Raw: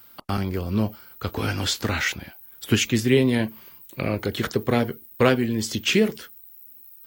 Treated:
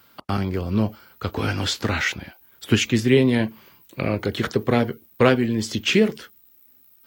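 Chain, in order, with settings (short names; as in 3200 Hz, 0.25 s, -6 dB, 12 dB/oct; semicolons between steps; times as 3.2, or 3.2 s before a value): HPF 58 Hz; high shelf 8400 Hz -11 dB; gain +2 dB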